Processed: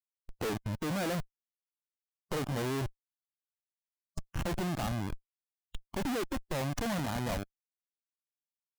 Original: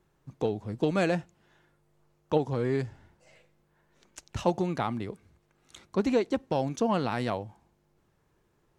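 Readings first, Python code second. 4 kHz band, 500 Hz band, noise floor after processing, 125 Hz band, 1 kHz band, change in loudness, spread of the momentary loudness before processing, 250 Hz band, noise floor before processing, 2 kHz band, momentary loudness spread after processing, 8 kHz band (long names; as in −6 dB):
+0.5 dB, −8.5 dB, below −85 dBFS, −2.0 dB, −6.0 dB, −5.5 dB, 10 LU, −5.5 dB, −70 dBFS, −2.0 dB, 15 LU, +4.0 dB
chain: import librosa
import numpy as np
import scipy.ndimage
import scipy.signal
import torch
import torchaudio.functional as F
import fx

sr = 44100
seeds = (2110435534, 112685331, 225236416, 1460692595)

y = fx.schmitt(x, sr, flips_db=-34.0)
y = fx.noise_reduce_blind(y, sr, reduce_db=8)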